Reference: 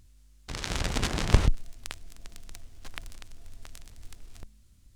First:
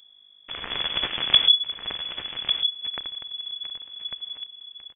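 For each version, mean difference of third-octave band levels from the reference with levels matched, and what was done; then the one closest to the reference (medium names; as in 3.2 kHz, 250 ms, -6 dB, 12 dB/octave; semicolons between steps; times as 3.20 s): 15.0 dB: peaking EQ 170 Hz -11.5 dB 2.6 oct; delay 1148 ms -8.5 dB; frequency inversion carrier 3.4 kHz; trim +3 dB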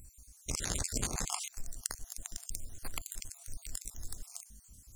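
10.0 dB: random holes in the spectrogram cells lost 47%; resonant high shelf 5.1 kHz +11.5 dB, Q 1.5; compression 4:1, threshold -35 dBFS, peak gain reduction 12 dB; trim +3 dB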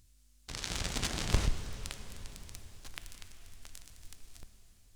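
6.0 dB: treble shelf 2.8 kHz +8.5 dB; saturation -7.5 dBFS, distortion -20 dB; plate-style reverb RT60 4.4 s, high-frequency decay 0.9×, DRR 8.5 dB; trim -7.5 dB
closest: third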